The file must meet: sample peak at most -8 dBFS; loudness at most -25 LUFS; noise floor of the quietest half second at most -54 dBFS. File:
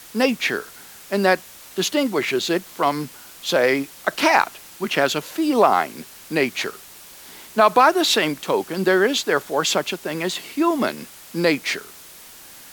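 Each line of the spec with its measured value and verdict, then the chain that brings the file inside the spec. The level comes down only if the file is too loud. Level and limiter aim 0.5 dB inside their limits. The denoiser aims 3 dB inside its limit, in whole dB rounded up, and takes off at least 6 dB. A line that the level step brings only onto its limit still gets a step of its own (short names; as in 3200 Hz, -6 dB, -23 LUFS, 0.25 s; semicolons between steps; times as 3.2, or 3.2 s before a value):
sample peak -2.5 dBFS: fail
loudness -20.5 LUFS: fail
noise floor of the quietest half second -43 dBFS: fail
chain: denoiser 9 dB, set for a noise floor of -43 dBFS; gain -5 dB; limiter -8.5 dBFS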